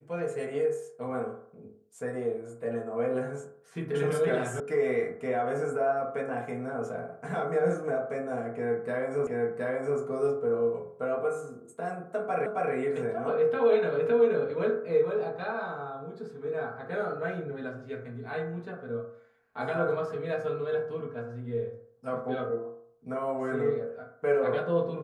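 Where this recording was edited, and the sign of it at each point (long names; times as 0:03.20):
0:04.60: cut off before it has died away
0:09.27: the same again, the last 0.72 s
0:12.46: the same again, the last 0.27 s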